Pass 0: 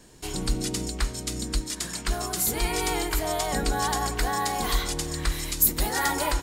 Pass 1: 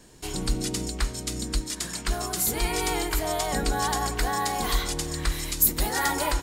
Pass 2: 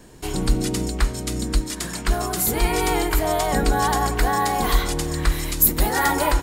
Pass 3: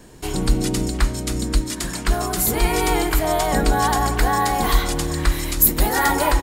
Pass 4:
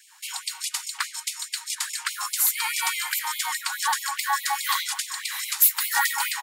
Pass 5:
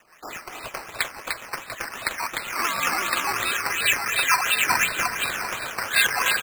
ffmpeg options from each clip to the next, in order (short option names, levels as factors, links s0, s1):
-af anull
-af "equalizer=f=5800:t=o:w=2.3:g=-6.5,volume=2.24"
-filter_complex "[0:a]asplit=2[s0][s1];[s1]adelay=291.5,volume=0.2,highshelf=f=4000:g=-6.56[s2];[s0][s2]amix=inputs=2:normalize=0,volume=1.19"
-filter_complex "[0:a]acrossover=split=610|6700[s0][s1][s2];[s0]alimiter=limit=0.141:level=0:latency=1:release=308[s3];[s3][s1][s2]amix=inputs=3:normalize=0,asoftclip=type=hard:threshold=0.282,afftfilt=real='re*gte(b*sr/1024,740*pow(2100/740,0.5+0.5*sin(2*PI*4.8*pts/sr)))':imag='im*gte(b*sr/1024,740*pow(2100/740,0.5+0.5*sin(2*PI*4.8*pts/sr)))':win_size=1024:overlap=0.75"
-af "aecho=1:1:300|525|693.8|820.3|915.2:0.631|0.398|0.251|0.158|0.1,lowpass=f=3000:t=q:w=0.5098,lowpass=f=3000:t=q:w=0.6013,lowpass=f=3000:t=q:w=0.9,lowpass=f=3000:t=q:w=2.563,afreqshift=-3500,acrusher=samples=10:mix=1:aa=0.000001:lfo=1:lforange=6:lforate=2.8,volume=1.58"